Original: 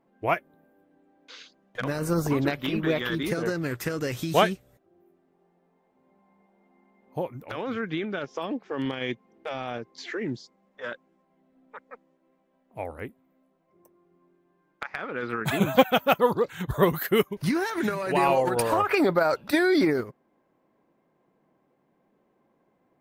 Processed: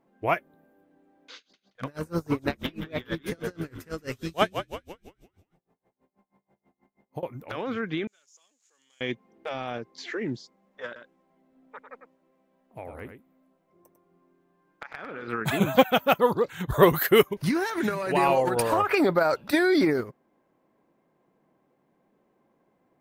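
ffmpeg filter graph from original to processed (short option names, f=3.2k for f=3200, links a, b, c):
-filter_complex "[0:a]asettb=1/sr,asplit=3[a][b][c];[a]atrim=end=1.364[d];[b]atrim=start=1.36:end=7.23,asetpts=PTS-STARTPTS,afade=t=in:d=0.004:c=qsin,afade=t=out:st=5.866:d=0.004:c=qsin,asoftclip=type=hard:threshold=-8dB,asplit=7[e][f][g][h][i][j][k];[f]adelay=175,afreqshift=-57,volume=-9.5dB[l];[g]adelay=350,afreqshift=-114,volume=-15.3dB[m];[h]adelay=525,afreqshift=-171,volume=-21.2dB[n];[i]adelay=700,afreqshift=-228,volume=-27dB[o];[j]adelay=875,afreqshift=-285,volume=-32.9dB[p];[k]adelay=1050,afreqshift=-342,volume=-38.7dB[q];[e][l][m][n][o][p][q]amix=inputs=7:normalize=0,atrim=end_sample=258867,aeval=exprs='val(0)*pow(10,-29*(0.5-0.5*cos(2*PI*6.2*n/s))/20)':c=same[r];[c]atrim=start=7.226[s];[d][r]acrossfade=d=0.004:c1=hsin:c2=qsin[t];[t][s]acrossfade=d=0.004:c1=qsin:c2=hsin,asettb=1/sr,asplit=3[u][v][w];[u]atrim=end=8.074[x];[v]atrim=start=8.07:end=9.01,asetpts=PTS-STARTPTS,afade=t=in:d=0.004:c=qsin,afade=t=out:st=0.936:d=0.004:c=qsin,aeval=exprs='val(0)+0.5*0.00562*sgn(val(0))':c=same,bandpass=f=6.9k:t=q:w=9.5[y];[w]atrim=start=9.006[z];[x][y]acrossfade=d=0.004:c1=hsin:c2=qsin[aa];[aa][z]acrossfade=d=0.004:c1=qsin:c2=hsin,asettb=1/sr,asplit=3[ab][ac][ad];[ab]atrim=end=10.864[ae];[ac]atrim=start=10.86:end=15.28,asetpts=PTS-STARTPTS,afade=t=in:d=0.004:c=qsin,afade=t=out:st=4.416:d=0.004:c=qsin,acompressor=threshold=-36dB:ratio=3:attack=3.2:release=140:knee=1:detection=peak,aecho=1:1:99:0.422,atrim=end_sample=194922[af];[ad]atrim=start=15.276[ag];[ae][af]acrossfade=d=0.004:c1=hsin:c2=qsin[ah];[ah][ag]acrossfade=d=0.004:c1=qsin:c2=hsin,asettb=1/sr,asplit=3[ai][aj][ak];[ai]atrim=end=16.724[al];[aj]atrim=start=16.72:end=17.34,asetpts=PTS-STARTPTS,afade=t=in:d=0.004:c=qsin,afade=t=out:st=0.616:d=0.004:c=qsin,equalizer=f=200:w=2.5:g=-6.5,acontrast=29[am];[ak]atrim=start=17.336[an];[al][am]acrossfade=d=0.004:c1=hsin:c2=qsin[ao];[ao][an]acrossfade=d=0.004:c1=qsin:c2=hsin"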